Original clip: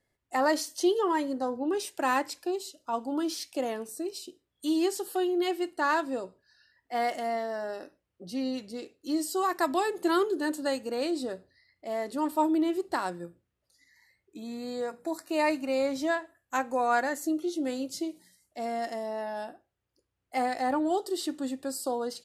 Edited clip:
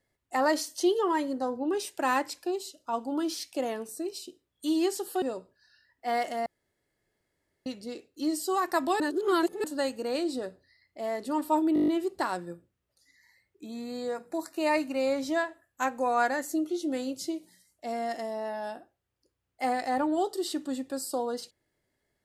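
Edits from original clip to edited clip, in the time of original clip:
0:05.22–0:06.09: remove
0:07.33–0:08.53: fill with room tone
0:09.87–0:10.51: reverse
0:12.61: stutter 0.02 s, 8 plays

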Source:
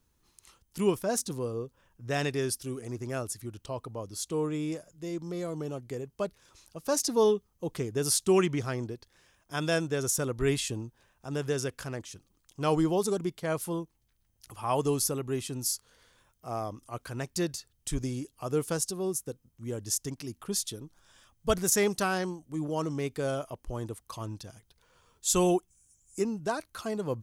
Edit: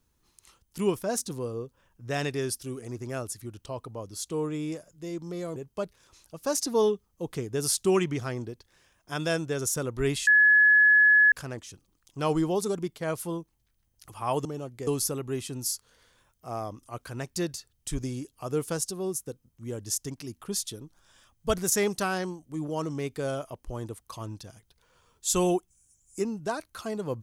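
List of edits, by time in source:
0:05.56–0:05.98: move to 0:14.87
0:10.69–0:11.74: beep over 1,700 Hz −15 dBFS

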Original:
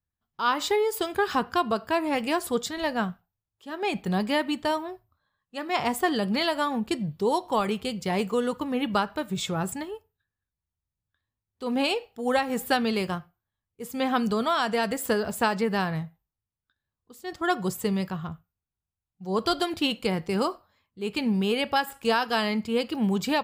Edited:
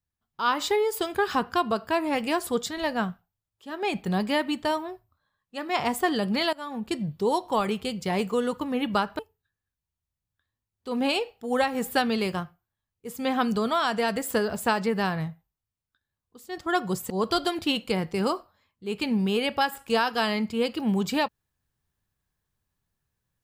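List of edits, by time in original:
0:06.53–0:07.01: fade in, from −18.5 dB
0:09.19–0:09.94: remove
0:17.85–0:19.25: remove

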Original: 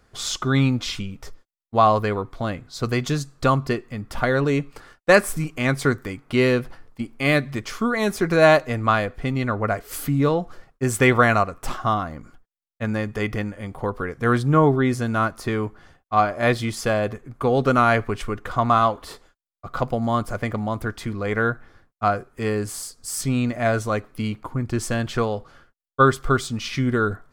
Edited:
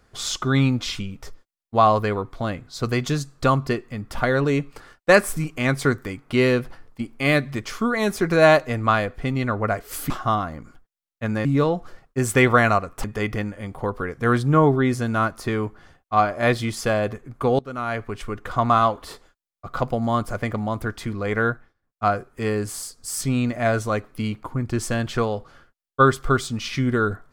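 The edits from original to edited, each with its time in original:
0:11.69–0:13.04: move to 0:10.10
0:17.59–0:18.58: fade in, from −23 dB
0:21.50–0:22.06: duck −24 dB, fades 0.24 s

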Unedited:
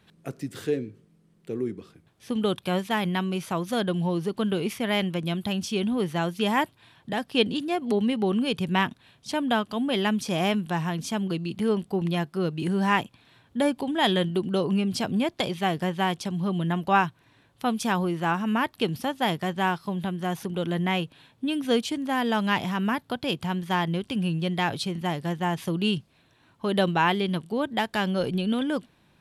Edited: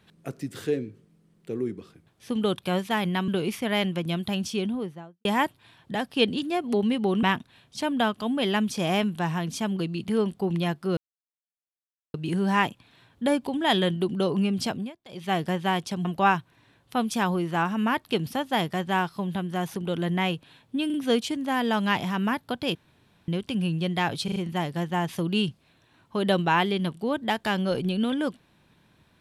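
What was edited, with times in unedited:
0:03.28–0:04.46: remove
0:05.61–0:06.43: fade out and dull
0:08.41–0:08.74: remove
0:12.48: splice in silence 1.17 s
0:15.01–0:15.68: duck −22.5 dB, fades 0.26 s
0:16.39–0:16.74: remove
0:21.55: stutter 0.04 s, 3 plays
0:23.36–0:23.89: fill with room tone
0:24.85: stutter 0.04 s, 4 plays

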